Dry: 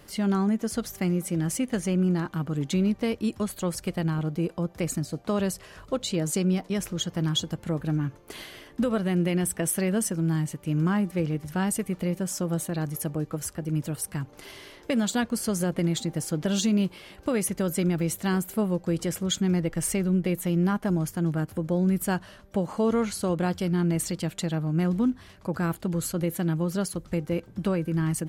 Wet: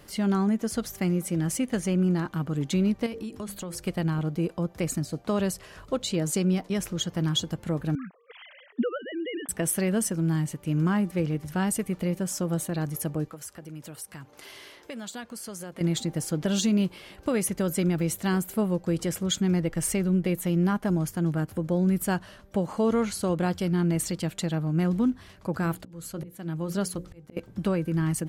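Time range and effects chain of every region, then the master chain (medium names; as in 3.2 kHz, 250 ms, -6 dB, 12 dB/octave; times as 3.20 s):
3.06–3.87 s: hum notches 50/100/150/200/250/300/350/400/450/500 Hz + compression 10:1, threshold -31 dBFS
7.95–9.49 s: formants replaced by sine waves + high-pass 580 Hz 6 dB/octave
13.28–15.81 s: high-pass 42 Hz + bass shelf 340 Hz -9.5 dB + compression 2:1, threshold -41 dBFS
25.62–27.37 s: slow attack 540 ms + hum notches 60/120/180/240/300/360/420/480/540 Hz
whole clip: none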